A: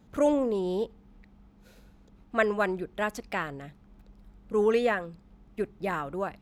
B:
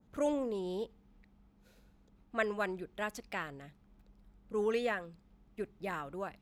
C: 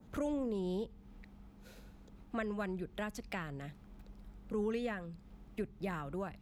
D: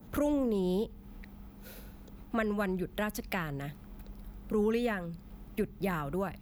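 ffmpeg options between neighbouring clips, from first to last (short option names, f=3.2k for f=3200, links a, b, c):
-af "adynamicequalizer=threshold=0.00891:dfrequency=1800:dqfactor=0.7:tfrequency=1800:tqfactor=0.7:attack=5:release=100:ratio=0.375:range=2:mode=boostabove:tftype=highshelf,volume=-8.5dB"
-filter_complex "[0:a]acrossover=split=200[a][b];[b]acompressor=threshold=-51dB:ratio=3[c];[a][c]amix=inputs=2:normalize=0,volume=8.5dB"
-af "aexciter=amount=2:drive=9.6:freq=11k,volume=6.5dB"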